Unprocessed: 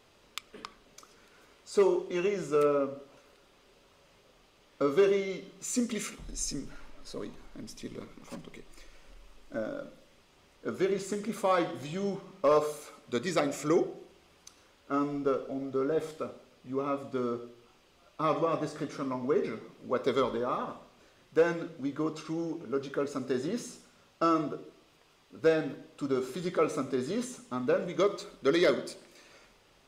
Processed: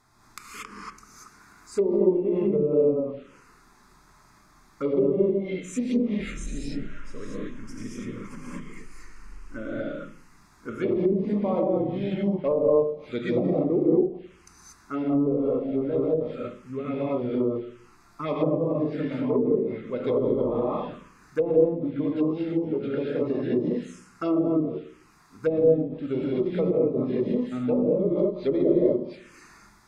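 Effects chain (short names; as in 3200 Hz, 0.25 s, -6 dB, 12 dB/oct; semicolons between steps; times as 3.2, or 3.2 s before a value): non-linear reverb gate 0.26 s rising, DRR -6.5 dB; envelope phaser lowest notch 500 Hz, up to 1500 Hz, full sweep at -22 dBFS; treble ducked by the level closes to 500 Hz, closed at -20 dBFS; gain +2 dB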